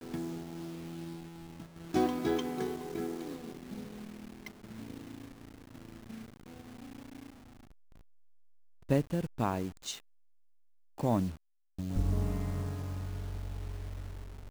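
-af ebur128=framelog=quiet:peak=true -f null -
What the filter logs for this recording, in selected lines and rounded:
Integrated loudness:
  I:         -36.5 LUFS
  Threshold: -47.9 LUFS
Loudness range:
  LRA:        13.9 LU
  Threshold: -58.2 LUFS
  LRA low:   -49.5 LUFS
  LRA high:  -35.5 LUFS
True peak:
  Peak:      -15.0 dBFS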